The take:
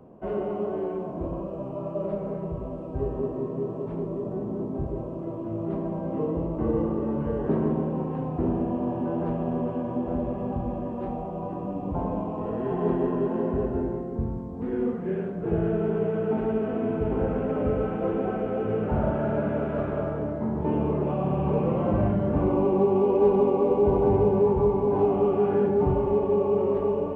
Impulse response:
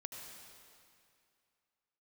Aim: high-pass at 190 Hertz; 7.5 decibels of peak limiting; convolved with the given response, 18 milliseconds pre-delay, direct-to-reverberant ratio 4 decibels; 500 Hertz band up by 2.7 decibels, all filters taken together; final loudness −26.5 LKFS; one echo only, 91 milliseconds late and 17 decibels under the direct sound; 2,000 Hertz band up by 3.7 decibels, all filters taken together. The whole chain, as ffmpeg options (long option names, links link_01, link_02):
-filter_complex "[0:a]highpass=190,equalizer=frequency=500:width_type=o:gain=3.5,equalizer=frequency=2000:width_type=o:gain=5,alimiter=limit=-16dB:level=0:latency=1,aecho=1:1:91:0.141,asplit=2[link_01][link_02];[1:a]atrim=start_sample=2205,adelay=18[link_03];[link_02][link_03]afir=irnorm=-1:irlink=0,volume=-1.5dB[link_04];[link_01][link_04]amix=inputs=2:normalize=0,volume=-1.5dB"